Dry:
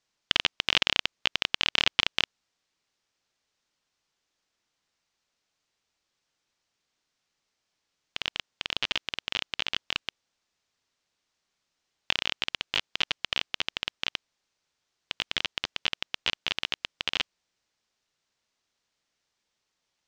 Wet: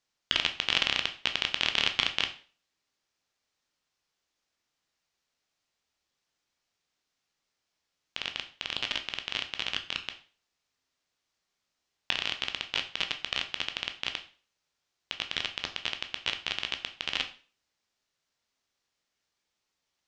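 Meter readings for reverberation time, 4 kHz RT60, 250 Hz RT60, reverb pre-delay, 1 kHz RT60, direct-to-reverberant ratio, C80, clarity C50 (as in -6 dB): 0.40 s, 0.40 s, 0.40 s, 8 ms, 0.40 s, 6.0 dB, 17.0 dB, 12.5 dB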